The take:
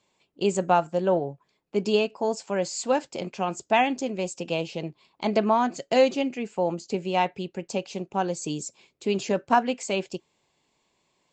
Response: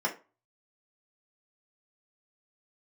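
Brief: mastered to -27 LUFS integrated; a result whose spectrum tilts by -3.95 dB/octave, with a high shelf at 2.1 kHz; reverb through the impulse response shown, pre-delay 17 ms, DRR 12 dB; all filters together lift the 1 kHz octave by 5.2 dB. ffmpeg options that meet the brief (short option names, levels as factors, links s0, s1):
-filter_complex "[0:a]equalizer=f=1000:t=o:g=6,highshelf=f=2100:g=4,asplit=2[s0][s1];[1:a]atrim=start_sample=2205,adelay=17[s2];[s1][s2]afir=irnorm=-1:irlink=0,volume=0.0944[s3];[s0][s3]amix=inputs=2:normalize=0,volume=0.631"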